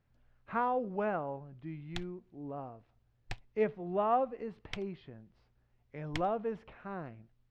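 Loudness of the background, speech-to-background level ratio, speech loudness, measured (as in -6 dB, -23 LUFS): -47.5 LUFS, 11.0 dB, -36.5 LUFS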